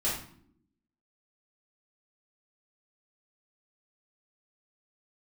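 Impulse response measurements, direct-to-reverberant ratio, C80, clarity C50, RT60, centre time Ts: -9.0 dB, 8.0 dB, 4.0 dB, 0.65 s, 42 ms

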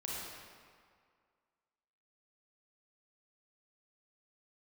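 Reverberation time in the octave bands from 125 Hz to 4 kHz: 1.8, 1.9, 2.0, 2.1, 1.8, 1.4 s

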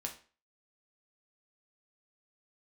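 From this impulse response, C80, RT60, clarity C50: 16.0 dB, 0.40 s, 10.5 dB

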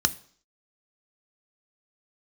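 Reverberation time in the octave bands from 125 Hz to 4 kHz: 0.45, 0.55, 0.55, 0.55, 0.50, 0.60 s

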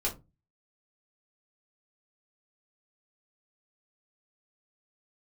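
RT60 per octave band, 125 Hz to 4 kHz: 0.45, 0.40, 0.25, 0.20, 0.20, 0.15 s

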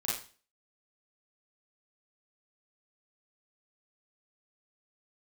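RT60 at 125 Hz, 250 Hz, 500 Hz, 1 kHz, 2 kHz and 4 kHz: 0.45, 0.40, 0.40, 0.40, 0.40, 0.40 s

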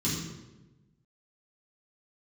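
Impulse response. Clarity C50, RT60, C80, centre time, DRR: 2.0 dB, 1.1 s, 4.0 dB, 61 ms, -9.5 dB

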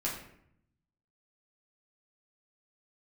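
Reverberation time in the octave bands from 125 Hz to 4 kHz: 1.3, 1.0, 0.70, 0.65, 0.65, 0.45 s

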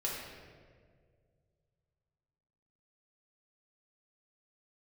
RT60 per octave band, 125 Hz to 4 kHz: 3.2, 2.2, 2.3, 1.6, 1.4, 1.1 s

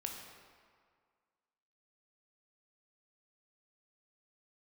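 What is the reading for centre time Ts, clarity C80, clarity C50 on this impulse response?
62 ms, 4.5 dB, 3.0 dB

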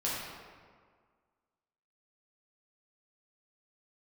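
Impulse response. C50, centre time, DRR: -1.5 dB, 0.104 s, -7.5 dB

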